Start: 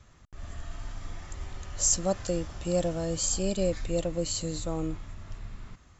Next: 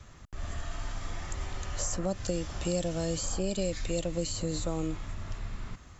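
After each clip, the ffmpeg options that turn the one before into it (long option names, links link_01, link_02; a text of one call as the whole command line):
ffmpeg -i in.wav -filter_complex "[0:a]acrossover=split=360|2100[link_01][link_02][link_03];[link_01]acompressor=threshold=-37dB:ratio=4[link_04];[link_02]acompressor=threshold=-41dB:ratio=4[link_05];[link_03]acompressor=threshold=-43dB:ratio=4[link_06];[link_04][link_05][link_06]amix=inputs=3:normalize=0,volume=5.5dB" out.wav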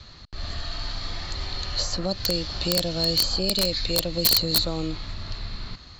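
ffmpeg -i in.wav -af "lowpass=frequency=4300:width_type=q:width=14,aeval=exprs='(mod(5.96*val(0)+1,2)-1)/5.96':channel_layout=same,volume=3.5dB" out.wav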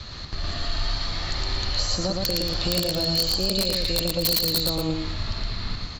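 ffmpeg -i in.wav -filter_complex "[0:a]acompressor=threshold=-35dB:ratio=2.5,asplit=2[link_01][link_02];[link_02]aecho=0:1:113.7|230.3:0.794|0.282[link_03];[link_01][link_03]amix=inputs=2:normalize=0,volume=7.5dB" out.wav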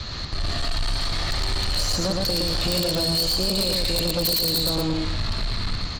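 ffmpeg -i in.wav -af "asoftclip=type=tanh:threshold=-25dB,volume=6dB" out.wav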